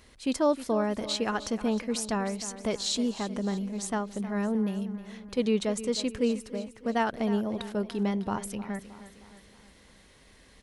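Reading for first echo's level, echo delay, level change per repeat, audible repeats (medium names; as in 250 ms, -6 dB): -14.0 dB, 311 ms, -6.0 dB, 4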